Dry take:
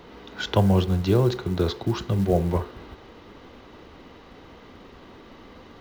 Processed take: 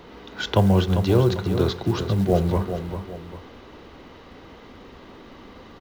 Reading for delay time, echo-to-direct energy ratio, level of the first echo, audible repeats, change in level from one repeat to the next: 397 ms, -8.5 dB, -9.0 dB, 2, -8.0 dB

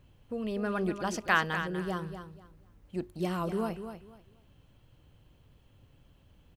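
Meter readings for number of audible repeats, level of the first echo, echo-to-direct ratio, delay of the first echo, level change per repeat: 2, -9.5 dB, -9.5 dB, 244 ms, -13.0 dB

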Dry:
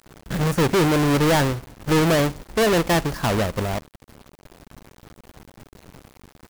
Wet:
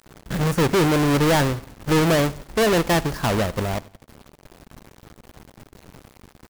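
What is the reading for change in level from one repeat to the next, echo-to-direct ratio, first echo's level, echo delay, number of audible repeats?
-8.0 dB, -22.0 dB, -22.5 dB, 91 ms, 2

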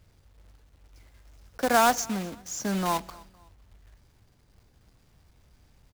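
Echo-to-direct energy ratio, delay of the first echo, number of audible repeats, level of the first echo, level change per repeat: -23.0 dB, 254 ms, 2, -23.5 dB, -9.0 dB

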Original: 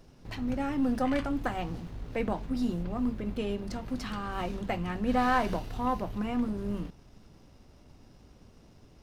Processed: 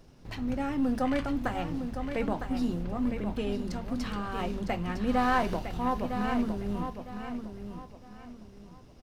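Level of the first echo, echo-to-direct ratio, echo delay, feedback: -8.0 dB, -7.5 dB, 957 ms, 30%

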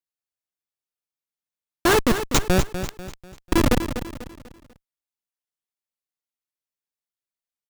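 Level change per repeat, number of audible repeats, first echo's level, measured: -8.0 dB, 4, -10.0 dB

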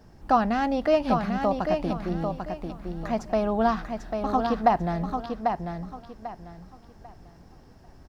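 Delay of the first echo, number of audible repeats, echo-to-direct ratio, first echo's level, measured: 794 ms, 3, -5.0 dB, -5.5 dB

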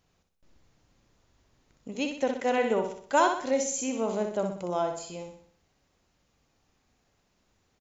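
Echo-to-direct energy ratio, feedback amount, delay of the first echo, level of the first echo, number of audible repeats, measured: -5.0 dB, 46%, 62 ms, -6.0 dB, 5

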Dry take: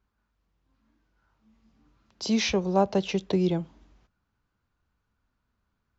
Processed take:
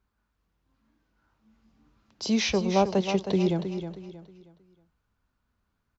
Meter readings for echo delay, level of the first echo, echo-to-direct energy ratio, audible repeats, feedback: 316 ms, -9.0 dB, -8.5 dB, 3, 33%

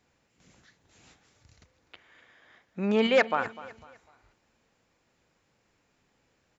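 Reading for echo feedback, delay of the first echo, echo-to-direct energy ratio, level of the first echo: 35%, 250 ms, -16.5 dB, -17.0 dB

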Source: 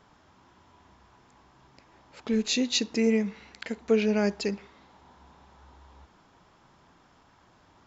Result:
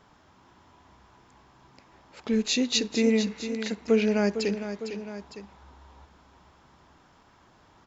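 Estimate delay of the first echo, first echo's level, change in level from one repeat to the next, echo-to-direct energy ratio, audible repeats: 455 ms, -10.0 dB, -4.5 dB, -8.5 dB, 2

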